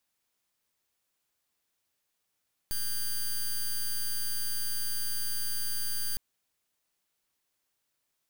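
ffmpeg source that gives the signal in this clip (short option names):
-f lavfi -i "aevalsrc='0.0316*(2*lt(mod(4720*t,1),0.09)-1)':d=3.46:s=44100"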